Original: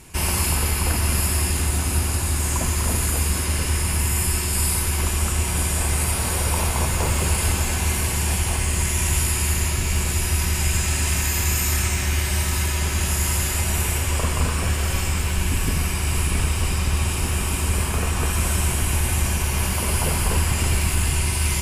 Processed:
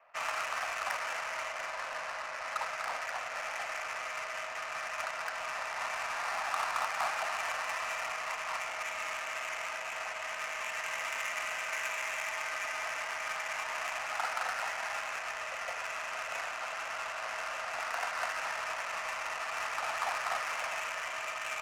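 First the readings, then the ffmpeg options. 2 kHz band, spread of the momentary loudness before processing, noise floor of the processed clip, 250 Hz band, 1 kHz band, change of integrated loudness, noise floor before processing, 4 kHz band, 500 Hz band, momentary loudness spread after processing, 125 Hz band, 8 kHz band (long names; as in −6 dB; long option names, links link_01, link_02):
−5.0 dB, 2 LU, −40 dBFS, −34.0 dB, −4.0 dB, −14.0 dB, −24 dBFS, −13.5 dB, −9.5 dB, 4 LU, below −40 dB, −22.0 dB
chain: -af "highpass=frequency=390:width_type=q:width=0.5412,highpass=frequency=390:width_type=q:width=1.307,lowpass=frequency=2200:width_type=q:width=0.5176,lowpass=frequency=2200:width_type=q:width=0.7071,lowpass=frequency=2200:width_type=q:width=1.932,afreqshift=270,adynamicsmooth=sensitivity=5.5:basefreq=1200,crystalizer=i=3:c=0,volume=-5dB"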